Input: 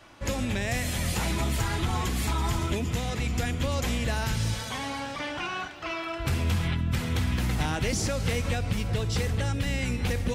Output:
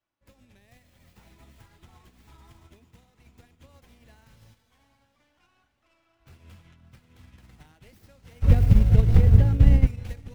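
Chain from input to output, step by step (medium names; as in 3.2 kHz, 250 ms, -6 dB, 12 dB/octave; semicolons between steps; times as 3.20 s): tracing distortion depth 0.18 ms; 8.42–9.87 s: tilt EQ -4.5 dB/octave; on a send: echo that smears into a reverb 690 ms, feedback 55%, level -10.5 dB; on the sum: upward expansion 2.5:1, over -32 dBFS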